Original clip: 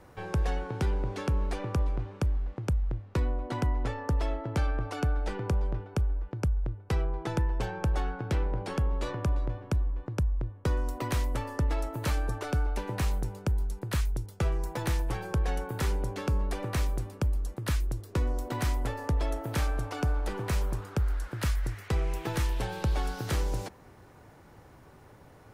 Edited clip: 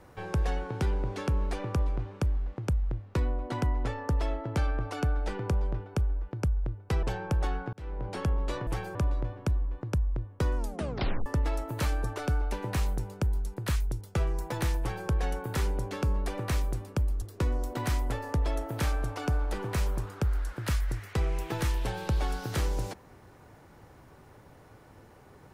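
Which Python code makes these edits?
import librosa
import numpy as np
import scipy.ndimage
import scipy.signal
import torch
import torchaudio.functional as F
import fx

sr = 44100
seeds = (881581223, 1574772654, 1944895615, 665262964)

y = fx.edit(x, sr, fx.cut(start_s=7.03, length_s=0.53),
    fx.fade_in_span(start_s=8.26, length_s=0.43),
    fx.tape_stop(start_s=10.82, length_s=0.69),
    fx.duplicate(start_s=15.05, length_s=0.28, to_s=9.2),
    fx.cut(start_s=17.47, length_s=0.5), tone=tone)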